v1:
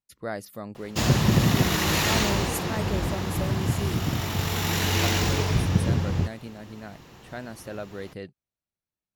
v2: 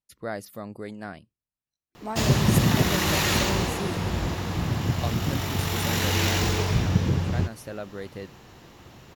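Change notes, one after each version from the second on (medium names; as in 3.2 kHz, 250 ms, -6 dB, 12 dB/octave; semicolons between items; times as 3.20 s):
background: entry +1.20 s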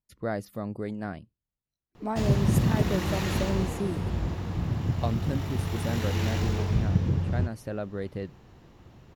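background -8.0 dB; master: add tilt EQ -2 dB/octave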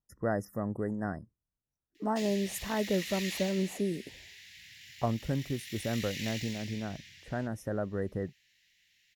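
speech: add brick-wall FIR band-stop 2–5 kHz; background: add elliptic high-pass 1.9 kHz, stop band 40 dB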